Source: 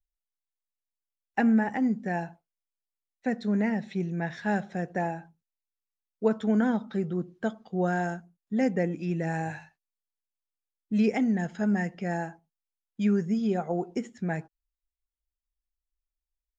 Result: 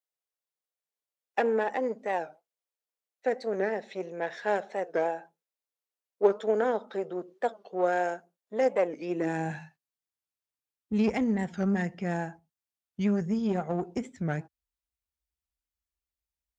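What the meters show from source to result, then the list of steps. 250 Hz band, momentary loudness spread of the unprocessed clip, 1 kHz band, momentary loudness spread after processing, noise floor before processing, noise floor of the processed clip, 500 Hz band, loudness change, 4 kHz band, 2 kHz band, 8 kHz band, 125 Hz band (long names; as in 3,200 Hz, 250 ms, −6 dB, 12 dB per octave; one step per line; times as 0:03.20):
−5.0 dB, 10 LU, +1.5 dB, 10 LU, below −85 dBFS, below −85 dBFS, +3.5 dB, −1.5 dB, 0.0 dB, −1.5 dB, can't be measured, −4.0 dB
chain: one-sided soft clipper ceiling −29 dBFS
high-pass filter sweep 480 Hz → 71 Hz, 0:08.97–0:10.10
wow of a warped record 45 rpm, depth 160 cents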